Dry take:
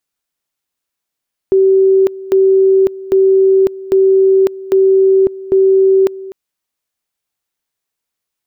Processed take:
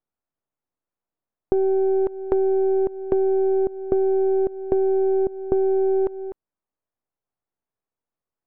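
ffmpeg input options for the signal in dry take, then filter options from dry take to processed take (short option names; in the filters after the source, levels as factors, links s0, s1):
-f lavfi -i "aevalsrc='pow(10,(-6-18.5*gte(mod(t,0.8),0.55))/20)*sin(2*PI*384*t)':d=4.8:s=44100"
-af "aeval=exprs='if(lt(val(0),0),0.447*val(0),val(0))':c=same,lowpass=1000,acompressor=threshold=0.141:ratio=6"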